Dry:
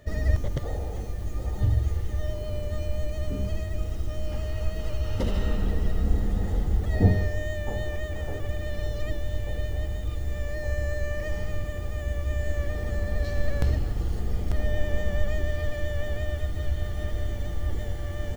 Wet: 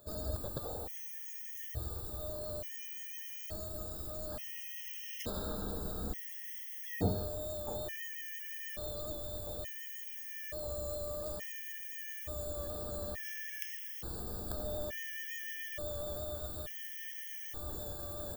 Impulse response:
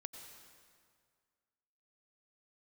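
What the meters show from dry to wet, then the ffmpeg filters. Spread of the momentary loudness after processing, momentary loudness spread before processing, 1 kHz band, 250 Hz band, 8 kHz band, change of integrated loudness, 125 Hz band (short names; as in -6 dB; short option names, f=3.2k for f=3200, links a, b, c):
3 LU, 6 LU, -7.0 dB, -11.5 dB, n/a, -9.5 dB, -18.0 dB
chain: -af "aemphasis=mode=production:type=bsi,afftfilt=real='re*gt(sin(2*PI*0.57*pts/sr)*(1-2*mod(floor(b*sr/1024/1700),2)),0)':imag='im*gt(sin(2*PI*0.57*pts/sr)*(1-2*mod(floor(b*sr/1024/1700),2)),0)':win_size=1024:overlap=0.75,volume=-4.5dB"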